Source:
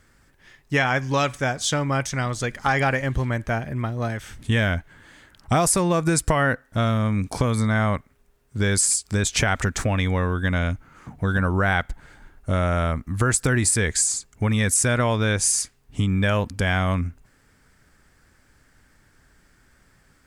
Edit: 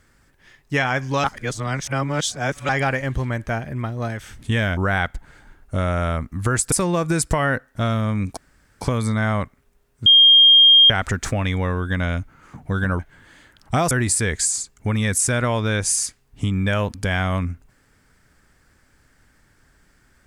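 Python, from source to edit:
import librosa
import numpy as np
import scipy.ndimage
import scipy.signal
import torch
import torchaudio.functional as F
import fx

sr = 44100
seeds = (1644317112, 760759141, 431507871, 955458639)

y = fx.edit(x, sr, fx.reverse_span(start_s=1.24, length_s=1.45),
    fx.swap(start_s=4.77, length_s=0.92, other_s=11.52, other_length_s=1.95),
    fx.insert_room_tone(at_s=7.34, length_s=0.44),
    fx.bleep(start_s=8.59, length_s=0.84, hz=3220.0, db=-7.5), tone=tone)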